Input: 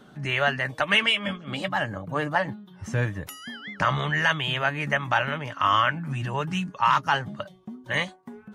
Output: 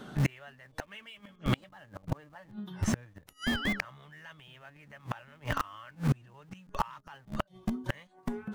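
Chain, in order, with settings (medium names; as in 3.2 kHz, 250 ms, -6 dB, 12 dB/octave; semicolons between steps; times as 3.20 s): in parallel at -11.5 dB: Schmitt trigger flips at -32 dBFS; on the sum: inverted gate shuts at -21 dBFS, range -33 dB; trim +5 dB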